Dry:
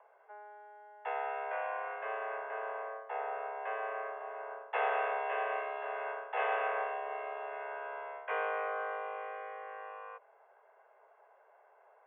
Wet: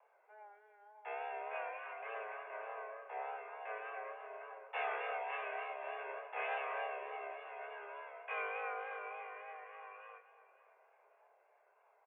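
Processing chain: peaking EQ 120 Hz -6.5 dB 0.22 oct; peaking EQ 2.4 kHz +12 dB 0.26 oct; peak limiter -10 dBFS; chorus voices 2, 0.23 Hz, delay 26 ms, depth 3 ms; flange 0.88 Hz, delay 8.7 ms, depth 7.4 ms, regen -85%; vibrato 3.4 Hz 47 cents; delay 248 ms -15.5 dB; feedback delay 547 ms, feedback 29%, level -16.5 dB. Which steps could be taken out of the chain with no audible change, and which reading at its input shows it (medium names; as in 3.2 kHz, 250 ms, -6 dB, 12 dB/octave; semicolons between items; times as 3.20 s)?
peaking EQ 120 Hz: input has nothing below 340 Hz; peak limiter -10 dBFS: peak at its input -18.5 dBFS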